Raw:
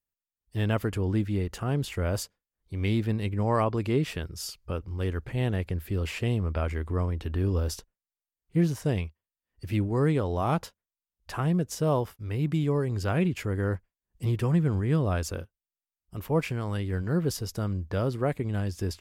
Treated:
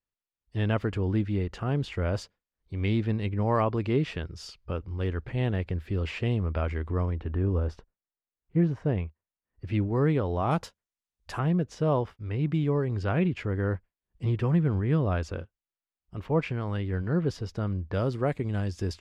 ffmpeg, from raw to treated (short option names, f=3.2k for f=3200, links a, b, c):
-af "asetnsamples=n=441:p=0,asendcmd='7.2 lowpass f 1800;9.65 lowpass f 3400;10.51 lowpass f 9000;11.39 lowpass f 3400;17.94 lowpass f 6600',lowpass=4.1k"